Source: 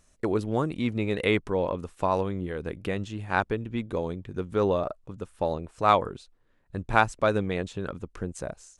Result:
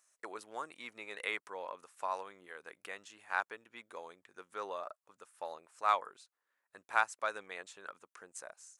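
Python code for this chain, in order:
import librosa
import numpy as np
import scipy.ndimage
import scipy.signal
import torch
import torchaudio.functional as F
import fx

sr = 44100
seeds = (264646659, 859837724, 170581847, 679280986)

y = scipy.signal.sosfilt(scipy.signal.butter(2, 1300.0, 'highpass', fs=sr, output='sos'), x)
y = fx.peak_eq(y, sr, hz=3300.0, db=-9.0, octaves=1.5)
y = y * 10.0 ** (-1.5 / 20.0)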